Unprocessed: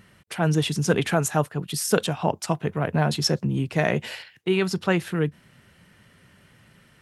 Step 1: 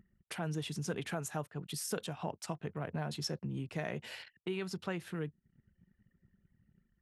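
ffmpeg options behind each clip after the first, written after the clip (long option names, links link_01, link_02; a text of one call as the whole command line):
ffmpeg -i in.wav -af "anlmdn=0.0251,acompressor=threshold=-40dB:ratio=2,volume=-4dB" out.wav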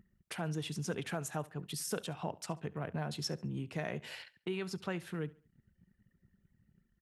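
ffmpeg -i in.wav -af "aecho=1:1:70|140|210:0.0891|0.0312|0.0109" out.wav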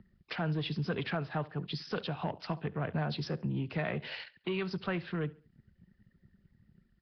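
ffmpeg -i in.wav -filter_complex "[0:a]acrossover=split=190|940|3800[link_01][link_02][link_03][link_04];[link_02]asoftclip=type=tanh:threshold=-36.5dB[link_05];[link_01][link_05][link_03][link_04]amix=inputs=4:normalize=0,volume=5.5dB" -ar 11025 -c:a nellymoser out.flv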